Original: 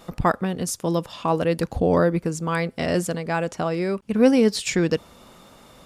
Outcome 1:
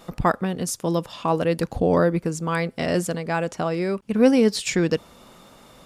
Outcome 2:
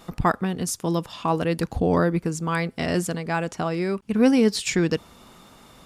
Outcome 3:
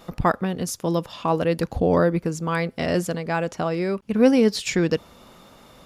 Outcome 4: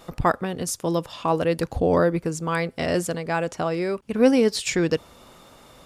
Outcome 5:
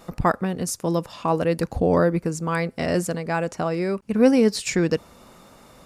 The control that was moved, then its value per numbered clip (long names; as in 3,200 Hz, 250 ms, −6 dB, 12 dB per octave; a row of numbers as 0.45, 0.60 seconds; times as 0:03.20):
parametric band, centre frequency: 75, 550, 8,500, 200, 3,300 Hertz